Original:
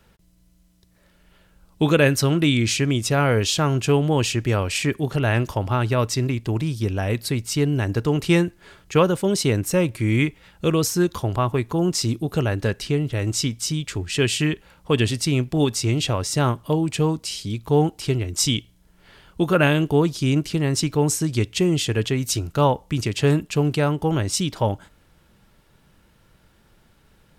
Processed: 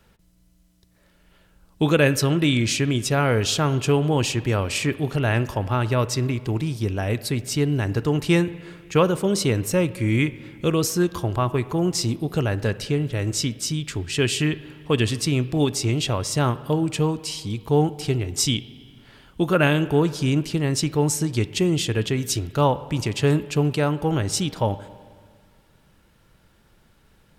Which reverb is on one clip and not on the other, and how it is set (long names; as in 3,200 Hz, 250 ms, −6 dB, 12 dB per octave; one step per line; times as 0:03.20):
spring reverb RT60 1.9 s, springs 40/55/59 ms, chirp 70 ms, DRR 15.5 dB
level −1 dB